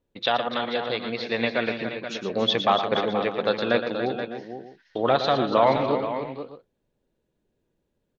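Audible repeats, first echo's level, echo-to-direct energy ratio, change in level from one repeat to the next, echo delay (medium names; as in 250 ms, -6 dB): 4, -9.5 dB, -4.5 dB, no regular repeats, 115 ms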